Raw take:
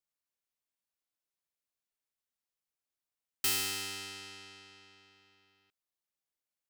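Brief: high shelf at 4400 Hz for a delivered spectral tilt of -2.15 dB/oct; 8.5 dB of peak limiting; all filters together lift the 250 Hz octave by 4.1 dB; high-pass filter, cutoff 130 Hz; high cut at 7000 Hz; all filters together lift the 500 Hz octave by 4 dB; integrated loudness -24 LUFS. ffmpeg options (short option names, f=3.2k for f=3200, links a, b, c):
-af "highpass=130,lowpass=7k,equalizer=f=250:t=o:g=4.5,equalizer=f=500:t=o:g=3.5,highshelf=f=4.4k:g=3.5,volume=15.5dB,alimiter=limit=-14.5dB:level=0:latency=1"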